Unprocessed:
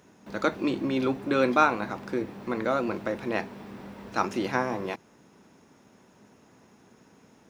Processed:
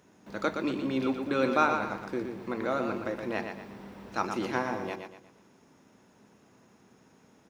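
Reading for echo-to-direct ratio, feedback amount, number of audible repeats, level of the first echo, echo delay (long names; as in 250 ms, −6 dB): −6.0 dB, 37%, 4, −6.5 dB, 119 ms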